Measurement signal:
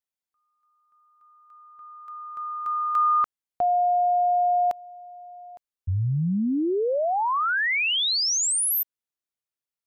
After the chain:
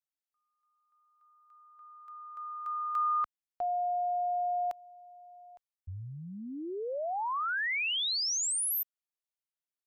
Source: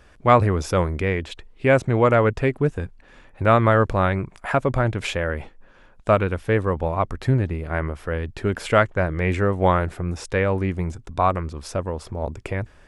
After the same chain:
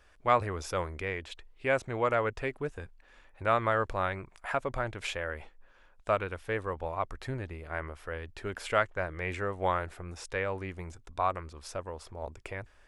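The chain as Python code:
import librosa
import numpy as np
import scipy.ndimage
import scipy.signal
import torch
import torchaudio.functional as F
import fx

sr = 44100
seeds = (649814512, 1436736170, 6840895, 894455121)

y = fx.peak_eq(x, sr, hz=160.0, db=-11.5, octaves=2.5)
y = y * librosa.db_to_amplitude(-7.5)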